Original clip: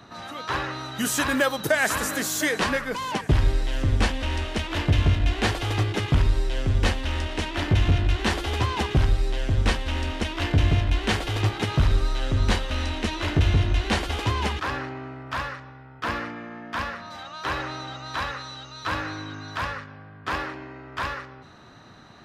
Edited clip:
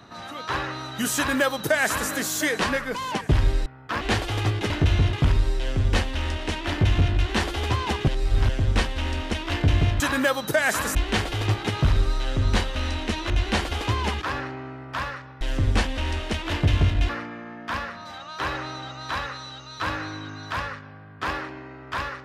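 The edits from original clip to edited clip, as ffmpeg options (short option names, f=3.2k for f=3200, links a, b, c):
-filter_complex "[0:a]asplit=12[a][b][c][d][e][f][g][h][i][j][k][l];[a]atrim=end=3.662[m];[b]atrim=start=15.788:end=16.142[n];[c]atrim=start=5.338:end=6.032[o];[d]atrim=start=13.248:end=13.682[p];[e]atrim=start=6.028:end=8.982[q];[f]atrim=start=8.978:end=9.392,asetpts=PTS-STARTPTS,areverse[r];[g]atrim=start=9.388:end=10.902[s];[h]atrim=start=1.158:end=2.112[t];[i]atrim=start=10.898:end=13.252[u];[j]atrim=start=13.678:end=15.792[v];[k]atrim=start=3.658:end=5.342[w];[l]atrim=start=16.138[x];[m][n]acrossfade=d=0.004:c1=hsin:c2=hsin[y];[y][o]acrossfade=d=0.004:c1=hsin:c2=hsin[z];[z][p]acrossfade=d=0.004:c1=hsin:c2=hsin[aa];[aa][q]acrossfade=d=0.004:c1=hsin:c2=hsin[ab];[ab][r]acrossfade=d=0.004:c1=hsin:c2=hsin[ac];[ac][s]acrossfade=d=0.004:c1=hsin:c2=hsin[ad];[ad][t]acrossfade=d=0.004:c1=hsin:c2=hsin[ae];[ae][u]acrossfade=d=0.004:c1=hsin:c2=hsin[af];[af][v]acrossfade=d=0.004:c1=hsin:c2=hsin[ag];[ag][w]acrossfade=d=0.004:c1=hsin:c2=hsin[ah];[ah][x]acrossfade=d=0.004:c1=hsin:c2=hsin"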